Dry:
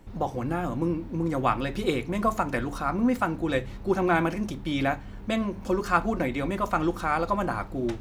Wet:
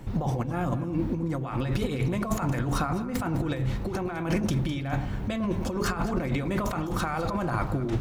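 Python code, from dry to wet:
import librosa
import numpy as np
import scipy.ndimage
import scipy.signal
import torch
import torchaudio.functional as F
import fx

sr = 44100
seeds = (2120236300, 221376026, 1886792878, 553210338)

p1 = fx.peak_eq(x, sr, hz=130.0, db=11.0, octaves=0.48)
p2 = fx.over_compress(p1, sr, threshold_db=-31.0, ratio=-1.0)
p3 = p2 + fx.echo_alternate(p2, sr, ms=103, hz=1100.0, feedback_pct=55, wet_db=-9.0, dry=0)
y = p3 * 10.0 ** (2.5 / 20.0)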